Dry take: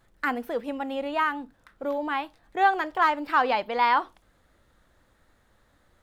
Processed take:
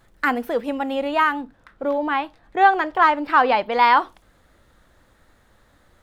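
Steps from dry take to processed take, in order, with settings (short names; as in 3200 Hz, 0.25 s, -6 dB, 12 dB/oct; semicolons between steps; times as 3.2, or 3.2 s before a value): 1.41–3.72 high shelf 5800 Hz -11 dB; gain +6.5 dB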